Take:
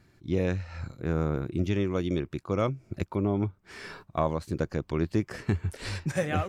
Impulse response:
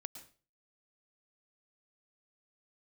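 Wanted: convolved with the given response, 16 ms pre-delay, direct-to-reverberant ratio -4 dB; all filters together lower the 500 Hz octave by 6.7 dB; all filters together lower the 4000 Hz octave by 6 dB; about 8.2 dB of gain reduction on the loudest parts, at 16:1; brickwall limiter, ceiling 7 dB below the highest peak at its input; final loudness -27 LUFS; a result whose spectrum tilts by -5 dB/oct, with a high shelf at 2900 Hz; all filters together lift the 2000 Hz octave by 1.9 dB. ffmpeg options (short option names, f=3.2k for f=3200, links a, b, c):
-filter_complex "[0:a]equalizer=f=500:t=o:g=-9,equalizer=f=2k:t=o:g=6,highshelf=f=2.9k:g=-5,equalizer=f=4k:t=o:g=-6,acompressor=threshold=-31dB:ratio=16,alimiter=level_in=4dB:limit=-24dB:level=0:latency=1,volume=-4dB,asplit=2[a][b];[1:a]atrim=start_sample=2205,adelay=16[c];[b][c]afir=irnorm=-1:irlink=0,volume=8dB[d];[a][d]amix=inputs=2:normalize=0,volume=8dB"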